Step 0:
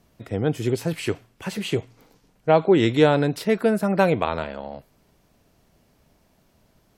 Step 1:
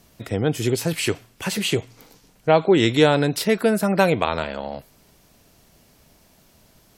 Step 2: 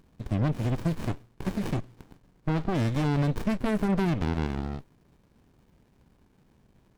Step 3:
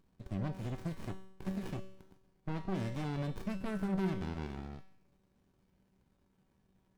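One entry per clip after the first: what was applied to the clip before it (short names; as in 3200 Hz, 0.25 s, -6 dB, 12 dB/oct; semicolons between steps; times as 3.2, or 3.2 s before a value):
high shelf 2700 Hz +8.5 dB; in parallel at -2 dB: compressor, threshold -27 dBFS, peak gain reduction 16 dB; on the sum: gain -1 dB
limiter -13 dBFS, peak gain reduction 11 dB; running maximum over 65 samples; gain -3 dB
resonator 190 Hz, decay 0.71 s, harmonics all, mix 80%; gain +1 dB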